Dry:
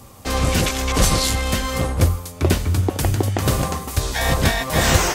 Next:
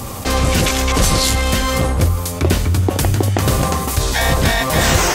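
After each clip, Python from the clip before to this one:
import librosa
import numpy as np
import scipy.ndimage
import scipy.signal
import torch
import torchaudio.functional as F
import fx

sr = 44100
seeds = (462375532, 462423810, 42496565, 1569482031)

y = fx.env_flatten(x, sr, amount_pct=50)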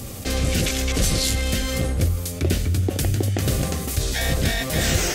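y = fx.peak_eq(x, sr, hz=1000.0, db=-14.5, octaves=0.76)
y = y * 10.0 ** (-5.5 / 20.0)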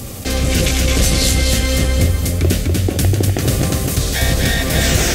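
y = fx.echo_feedback(x, sr, ms=248, feedback_pct=45, wet_db=-4.5)
y = y * 10.0 ** (5.0 / 20.0)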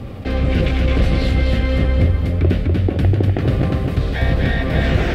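y = fx.air_absorb(x, sr, metres=430.0)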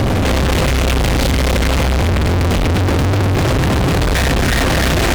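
y = fx.fuzz(x, sr, gain_db=43.0, gate_db=-51.0)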